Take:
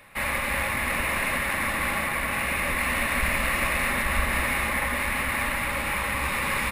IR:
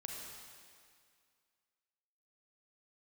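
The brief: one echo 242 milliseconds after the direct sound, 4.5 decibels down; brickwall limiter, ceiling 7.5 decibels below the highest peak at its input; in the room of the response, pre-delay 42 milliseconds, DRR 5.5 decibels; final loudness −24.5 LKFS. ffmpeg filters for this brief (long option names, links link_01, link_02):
-filter_complex "[0:a]alimiter=limit=-19.5dB:level=0:latency=1,aecho=1:1:242:0.596,asplit=2[link_01][link_02];[1:a]atrim=start_sample=2205,adelay=42[link_03];[link_02][link_03]afir=irnorm=-1:irlink=0,volume=-4dB[link_04];[link_01][link_04]amix=inputs=2:normalize=0,volume=0.5dB"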